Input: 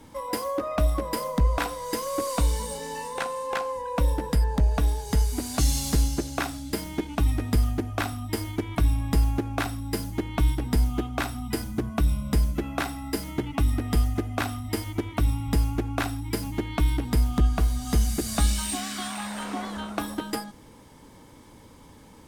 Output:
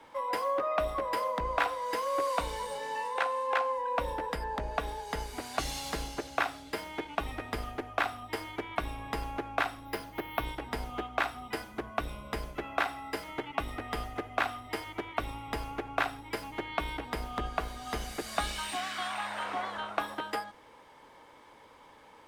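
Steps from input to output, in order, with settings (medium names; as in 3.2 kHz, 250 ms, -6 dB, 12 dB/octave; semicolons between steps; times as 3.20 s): octave divider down 1 oct, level -6 dB; three-band isolator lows -21 dB, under 470 Hz, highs -15 dB, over 3.5 kHz; 9.85–10.45 s: careless resampling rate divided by 3×, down filtered, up hold; trim +1.5 dB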